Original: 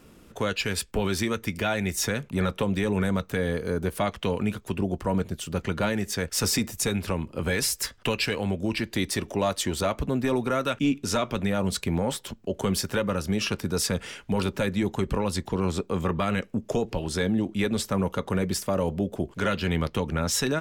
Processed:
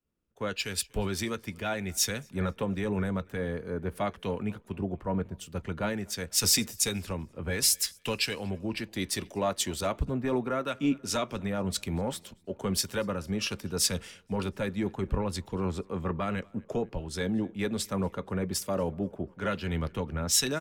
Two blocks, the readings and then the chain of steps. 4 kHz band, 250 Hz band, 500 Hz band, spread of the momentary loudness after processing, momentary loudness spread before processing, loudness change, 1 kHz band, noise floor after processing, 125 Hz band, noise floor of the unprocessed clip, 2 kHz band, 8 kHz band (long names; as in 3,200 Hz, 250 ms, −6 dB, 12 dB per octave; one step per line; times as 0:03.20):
−1.0 dB, −5.0 dB, −5.0 dB, 9 LU, 4 LU, −3.5 dB, −5.0 dB, −59 dBFS, −5.0 dB, −53 dBFS, −5.5 dB, +1.0 dB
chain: repeating echo 244 ms, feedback 60%, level −24 dB
multiband upward and downward expander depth 100%
level −5 dB